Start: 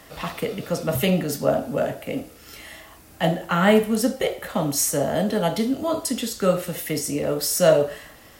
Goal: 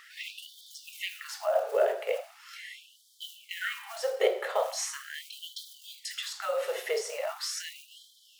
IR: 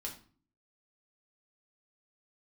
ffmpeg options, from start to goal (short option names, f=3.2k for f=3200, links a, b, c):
-filter_complex "[0:a]aemphasis=mode=reproduction:type=bsi,acrossover=split=7400[a][b];[b]acompressor=threshold=-46dB:ratio=4:attack=1:release=60[c];[a][c]amix=inputs=2:normalize=0,bandreject=f=131.9:t=h:w=4,bandreject=f=263.8:t=h:w=4,bandreject=f=395.7:t=h:w=4,bandreject=f=527.6:t=h:w=4,bandreject=f=659.5:t=h:w=4,bandreject=f=791.4:t=h:w=4,bandreject=f=923.3:t=h:w=4,bandreject=f=1.0552k:t=h:w=4,bandreject=f=1.1871k:t=h:w=4,bandreject=f=1.319k:t=h:w=4,bandreject=f=1.4509k:t=h:w=4,bandreject=f=1.5828k:t=h:w=4,bandreject=f=1.7147k:t=h:w=4,acrusher=bits=8:mode=log:mix=0:aa=0.000001,asplit=2[d][e];[1:a]atrim=start_sample=2205,asetrate=83790,aresample=44100[f];[e][f]afir=irnorm=-1:irlink=0,volume=-9dB[g];[d][g]amix=inputs=2:normalize=0,alimiter=limit=-12.5dB:level=0:latency=1:release=148,afftfilt=real='re*gte(b*sr/1024,360*pow(3100/360,0.5+0.5*sin(2*PI*0.4*pts/sr)))':imag='im*gte(b*sr/1024,360*pow(3100/360,0.5+0.5*sin(2*PI*0.4*pts/sr)))':win_size=1024:overlap=0.75"